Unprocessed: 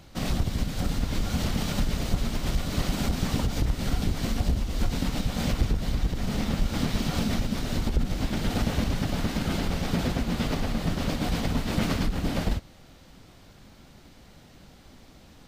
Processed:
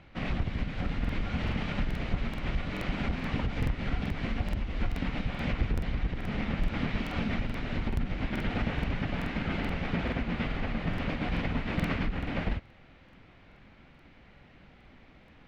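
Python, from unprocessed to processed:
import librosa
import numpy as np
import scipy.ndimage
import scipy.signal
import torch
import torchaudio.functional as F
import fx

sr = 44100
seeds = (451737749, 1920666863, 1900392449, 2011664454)

y = fx.lowpass_res(x, sr, hz=2300.0, q=2.1)
y = fx.buffer_crackle(y, sr, first_s=1.0, period_s=0.43, block=2048, kind='repeat')
y = y * 10.0 ** (-4.5 / 20.0)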